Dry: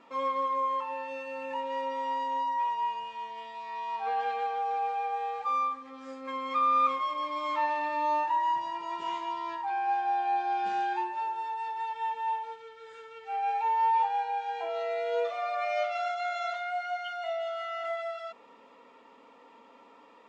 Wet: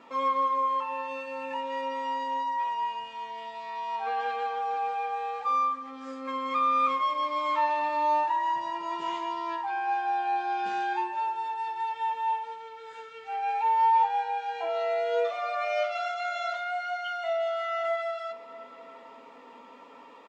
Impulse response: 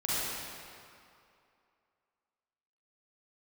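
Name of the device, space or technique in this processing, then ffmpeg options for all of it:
ducked reverb: -filter_complex "[0:a]asplit=3[link_01][link_02][link_03];[1:a]atrim=start_sample=2205[link_04];[link_02][link_04]afir=irnorm=-1:irlink=0[link_05];[link_03]apad=whole_len=894432[link_06];[link_05][link_06]sidechaincompress=threshold=-46dB:ratio=8:attack=16:release=742,volume=-11.5dB[link_07];[link_01][link_07]amix=inputs=2:normalize=0,highpass=73,asplit=2[link_08][link_09];[link_09]adelay=12,volume=-11dB[link_10];[link_08][link_10]amix=inputs=2:normalize=0,volume=2dB"

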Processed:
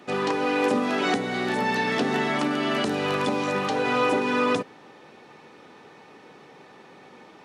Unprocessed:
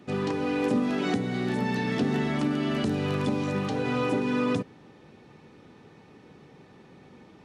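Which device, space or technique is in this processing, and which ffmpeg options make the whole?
filter by subtraction: -filter_complex "[0:a]asplit=2[link_01][link_02];[link_02]lowpass=840,volume=-1[link_03];[link_01][link_03]amix=inputs=2:normalize=0,volume=6.5dB"

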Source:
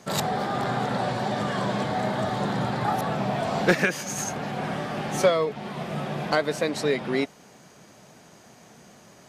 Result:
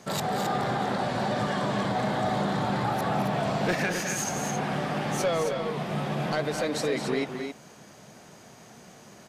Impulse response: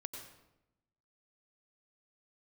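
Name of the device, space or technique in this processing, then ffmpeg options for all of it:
soft clipper into limiter: -af "asoftclip=type=tanh:threshold=-15.5dB,alimiter=limit=-20.5dB:level=0:latency=1:release=88,aecho=1:1:212.8|268.2:0.355|0.447"

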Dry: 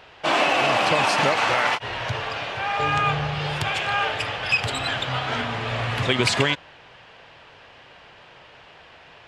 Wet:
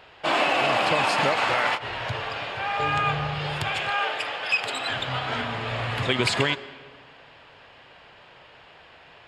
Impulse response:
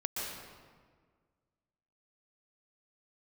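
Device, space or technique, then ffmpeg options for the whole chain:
filtered reverb send: -filter_complex "[0:a]asplit=2[link_01][link_02];[link_02]highpass=190,lowpass=6000[link_03];[1:a]atrim=start_sample=2205[link_04];[link_03][link_04]afir=irnorm=-1:irlink=0,volume=-18.5dB[link_05];[link_01][link_05]amix=inputs=2:normalize=0,bandreject=frequency=5900:width=7.9,asettb=1/sr,asplit=3[link_06][link_07][link_08];[link_06]atrim=end=3.904[link_09];[link_07]atrim=start=3.9:end=4.9,asetpts=PTS-STARTPTS,afade=type=in:duration=0.004:curve=qsin,afade=type=out:start_time=0.996:duration=0.004:curve=qsin,highpass=300[link_10];[link_08]atrim=start=4.896[link_11];[link_09][link_10]acrossfade=duration=0.004:curve1=hsin:curve2=qsin[link_12];[link_12][link_11]acrossfade=duration=0.004:curve1=qsin:curve2=hsin,volume=-3dB"

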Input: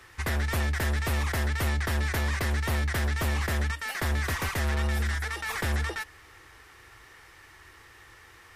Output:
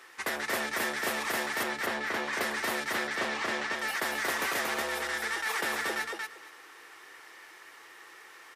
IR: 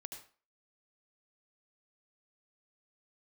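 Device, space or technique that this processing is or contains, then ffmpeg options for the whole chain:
filter by subtraction: -filter_complex "[0:a]asettb=1/sr,asplit=3[link_01][link_02][link_03];[link_01]atrim=end=1.634[link_04];[link_02]atrim=start=1.63:end=2.33,asetpts=PTS-STARTPTS,afade=type=in:duration=0.004:curve=qsin,afade=type=out:start_time=0.696:duration=0.004:curve=qsin,aemphasis=mode=reproduction:type=50fm[link_05];[link_03]atrim=start=2.326[link_06];[link_04][link_05]acrossfade=duration=0.004:curve1=hsin:curve2=qsin[link_07];[link_07][link_06]acrossfade=duration=0.004:curve1=qsin:curve2=hsin,asettb=1/sr,asplit=3[link_08][link_09][link_10];[link_08]atrim=end=2.924[link_11];[link_09]atrim=start=2.92:end=3.76,asetpts=PTS-STARTPTS,afade=type=in:duration=0.004:curve=qsin,afade=type=out:start_time=0.836:duration=0.004:curve=qsin,lowpass=5800[link_12];[link_10]atrim=start=3.756[link_13];[link_11][link_12]acrossfade=duration=0.004:curve1=hsin:curve2=qsin[link_14];[link_14][link_13]acrossfade=duration=0.004:curve1=qsin:curve2=hsin,highpass=390,asplit=2[link_15][link_16];[link_16]lowpass=220,volume=-1[link_17];[link_15][link_17]amix=inputs=2:normalize=0,aecho=1:1:232|464|696:0.708|0.12|0.0205"

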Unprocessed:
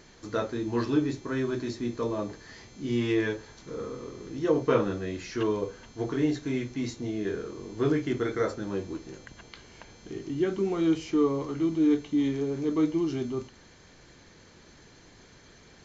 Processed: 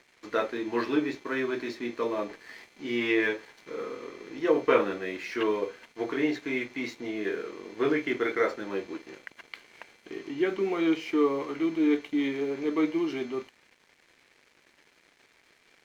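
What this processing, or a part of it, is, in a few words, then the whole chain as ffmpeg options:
pocket radio on a weak battery: -af "highpass=330,lowpass=4300,aeval=exprs='sgn(val(0))*max(abs(val(0))-0.00158,0)':channel_layout=same,equalizer=frequency=2200:width_type=o:width=0.6:gain=8.5,volume=2.5dB"

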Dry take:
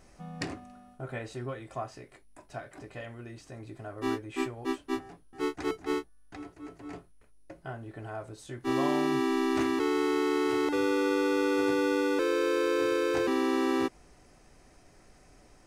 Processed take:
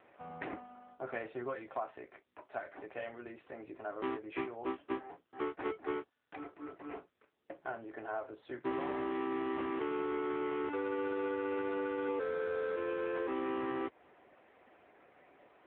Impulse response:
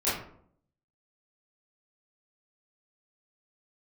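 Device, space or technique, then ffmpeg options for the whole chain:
voicemail: -filter_complex "[0:a]asettb=1/sr,asplit=3[link_01][link_02][link_03];[link_01]atrim=end=12.084[link_04];[link_02]atrim=start=12.08:end=12.76,asetpts=PTS-STARTPTS,afade=type=in:duration=0.004:curve=qsin,afade=type=out:start_time=0.676:duration=0.004:curve=qsin,aecho=1:1:4.4:0.9,atrim=end_sample=29988[link_05];[link_03]atrim=start=12.756[link_06];[link_04][link_05]acrossfade=duration=0.004:curve1=hsin:curve2=qsin[link_07];[link_07][link_06]acrossfade=duration=0.004:curve1=qsin:curve2=hsin,highpass=380,lowpass=2700,acompressor=threshold=-35dB:ratio=10,volume=3.5dB" -ar 8000 -c:a libopencore_amrnb -b:a 6700

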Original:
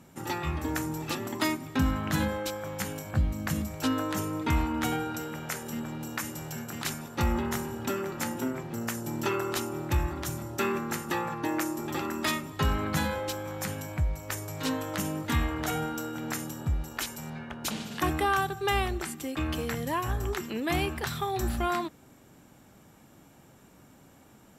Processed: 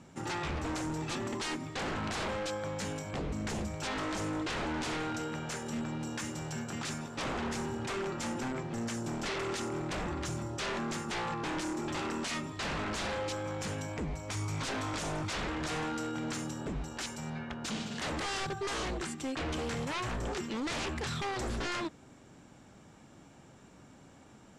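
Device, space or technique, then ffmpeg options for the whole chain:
synthesiser wavefolder: -filter_complex "[0:a]asettb=1/sr,asplit=3[link_01][link_02][link_03];[link_01]atrim=end=14.304[link_04];[link_02]atrim=start=14.3:end=15.33,asetpts=PTS-STARTPTS,afade=type=in:duration=0.004:curve=qsin,afade=type=out:start_time=1.026:duration=0.004:curve=qsin,aecho=1:1:0.9:1,atrim=end_sample=45423[link_05];[link_03]atrim=start=15.326[link_06];[link_04][link_05]acrossfade=duration=0.004:curve1=hsin:curve2=qsin[link_07];[link_07][link_06]acrossfade=duration=0.004:curve1=qsin:curve2=hsin,aeval=exprs='0.0316*(abs(mod(val(0)/0.0316+3,4)-2)-1)':channel_layout=same,lowpass=frequency=8000:width=0.5412,lowpass=frequency=8000:width=1.3066"

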